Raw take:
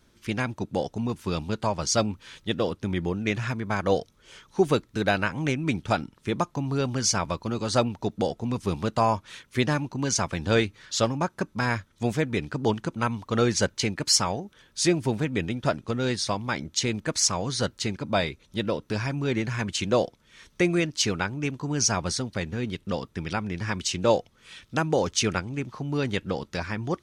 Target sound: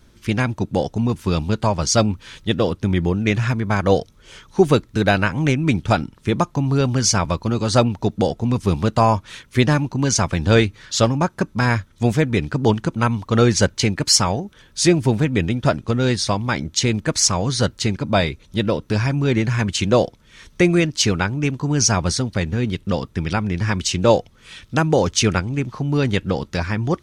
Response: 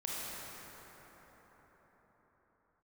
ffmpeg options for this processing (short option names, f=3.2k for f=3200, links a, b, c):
-af "lowshelf=f=140:g=8,volume=6dB"